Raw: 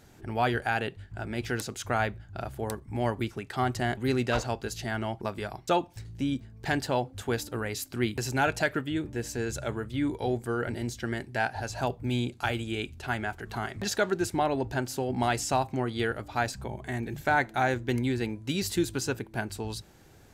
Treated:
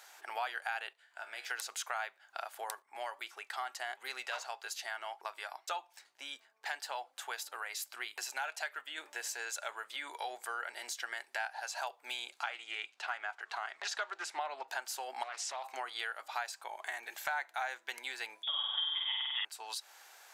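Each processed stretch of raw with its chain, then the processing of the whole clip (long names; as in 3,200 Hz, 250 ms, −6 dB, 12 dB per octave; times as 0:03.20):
0:00.93–0:01.51: notch filter 790 Hz, Q 15 + tuned comb filter 68 Hz, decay 0.77 s, mix 70%
0:02.82–0:08.98: flanger 1.7 Hz, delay 2.3 ms, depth 1.4 ms, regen +87% + one half of a high-frequency compander decoder only
0:12.40–0:14.68: high-frequency loss of the air 71 metres + highs frequency-modulated by the lows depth 0.13 ms
0:15.23–0:15.64: low-pass filter 6,300 Hz + downward compressor, threshold −32 dBFS + highs frequency-modulated by the lows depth 0.66 ms
0:18.43–0:19.45: voice inversion scrambler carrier 3,500 Hz + flutter between parallel walls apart 8.3 metres, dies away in 1.5 s
whole clip: high-pass filter 780 Hz 24 dB per octave; downward compressor 3 to 1, threshold −44 dBFS; level +5.5 dB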